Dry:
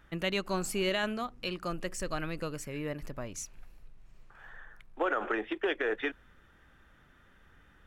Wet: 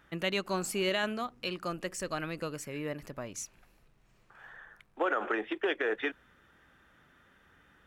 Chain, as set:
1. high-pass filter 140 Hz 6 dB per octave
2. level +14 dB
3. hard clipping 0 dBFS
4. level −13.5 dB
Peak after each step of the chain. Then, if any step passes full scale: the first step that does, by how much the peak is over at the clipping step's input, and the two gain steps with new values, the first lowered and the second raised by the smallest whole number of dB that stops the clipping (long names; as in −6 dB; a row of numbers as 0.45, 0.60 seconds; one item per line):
−18.5, −4.5, −4.5, −18.0 dBFS
no step passes full scale